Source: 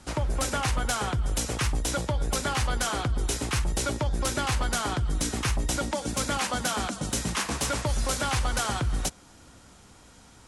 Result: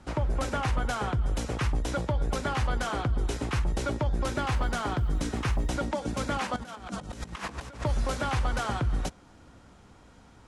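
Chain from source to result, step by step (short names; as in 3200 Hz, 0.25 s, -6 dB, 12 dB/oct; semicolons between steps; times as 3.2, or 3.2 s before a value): LPF 1800 Hz 6 dB/oct; 4.32–5.7 short-mantissa float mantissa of 6-bit; 6.56–7.84 negative-ratio compressor -37 dBFS, ratio -0.5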